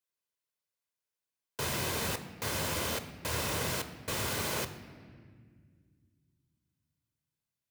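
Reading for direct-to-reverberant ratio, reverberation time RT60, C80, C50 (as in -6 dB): 9.0 dB, 1.8 s, 13.0 dB, 11.5 dB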